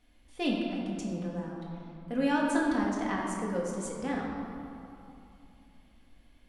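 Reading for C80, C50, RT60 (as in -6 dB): 1.5 dB, 0.0 dB, 2.7 s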